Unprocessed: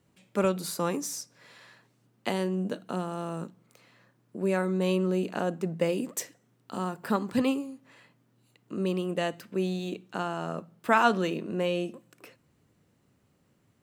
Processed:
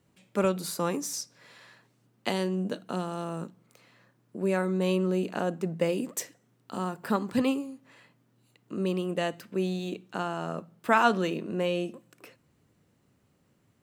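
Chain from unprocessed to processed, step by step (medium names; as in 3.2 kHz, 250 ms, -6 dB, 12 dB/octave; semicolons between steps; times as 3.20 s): 1.13–3.24 s: dynamic bell 4.4 kHz, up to +5 dB, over -51 dBFS, Q 1.1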